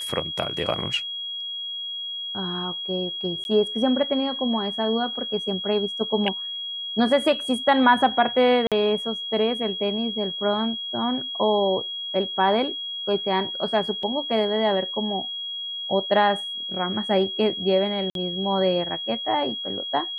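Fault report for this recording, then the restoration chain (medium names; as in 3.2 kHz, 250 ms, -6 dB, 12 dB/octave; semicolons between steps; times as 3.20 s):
whine 3.3 kHz -29 dBFS
3.44–3.45 s: dropout 11 ms
8.67–8.72 s: dropout 47 ms
14.03 s: dropout 2.6 ms
18.10–18.15 s: dropout 52 ms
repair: band-stop 3.3 kHz, Q 30; interpolate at 3.44 s, 11 ms; interpolate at 8.67 s, 47 ms; interpolate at 14.03 s, 2.6 ms; interpolate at 18.10 s, 52 ms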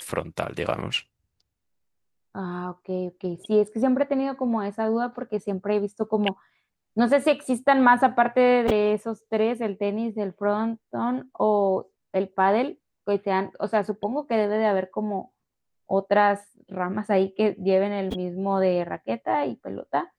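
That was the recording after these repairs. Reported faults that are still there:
nothing left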